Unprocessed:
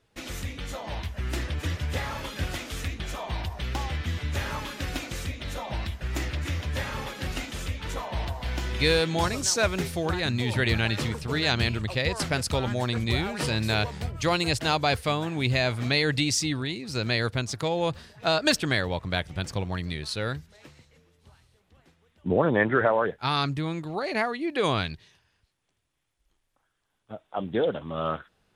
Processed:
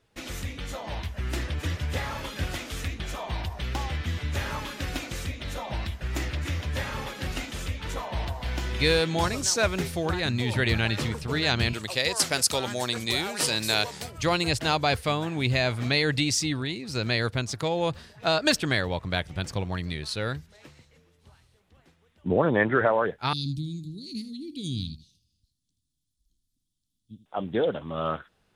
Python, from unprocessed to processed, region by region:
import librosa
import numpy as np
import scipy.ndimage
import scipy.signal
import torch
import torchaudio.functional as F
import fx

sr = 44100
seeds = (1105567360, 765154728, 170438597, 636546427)

y = fx.chain(x, sr, fx.highpass(hz=100.0, slope=12),
    fx.bass_treble(bass_db=-8, treble_db=11), at=(11.73, 14.18))
y = fx.chain(y, sr, fx.ellip_bandstop(low_hz=260.0, high_hz=4000.0, order=3, stop_db=50),
    fx.echo_single(ms=79, db=-14.0), at=(23.33, 27.26))